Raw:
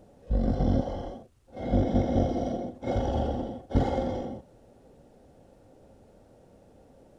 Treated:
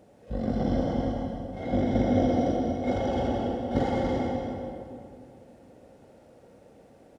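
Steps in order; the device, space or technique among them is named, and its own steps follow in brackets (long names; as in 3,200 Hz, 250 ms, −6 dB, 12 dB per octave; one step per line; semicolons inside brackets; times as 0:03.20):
stadium PA (high-pass filter 140 Hz 6 dB per octave; parametric band 2,100 Hz +4.5 dB 0.75 octaves; loudspeakers that aren't time-aligned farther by 64 metres −11 dB, 98 metres −7 dB; convolution reverb RT60 2.4 s, pre-delay 75 ms, DRR 3 dB)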